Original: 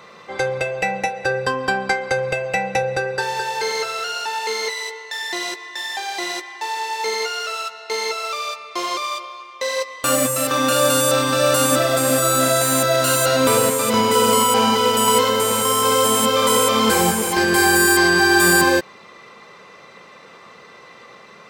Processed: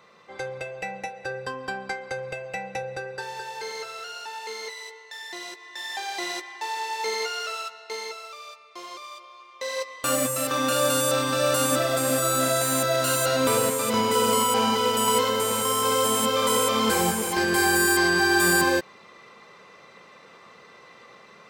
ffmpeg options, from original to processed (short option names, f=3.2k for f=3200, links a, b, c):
-af "volume=4.5dB,afade=t=in:st=5.56:d=0.44:silence=0.473151,afade=t=out:st=7.46:d=0.84:silence=0.298538,afade=t=in:st=9.15:d=0.73:silence=0.334965"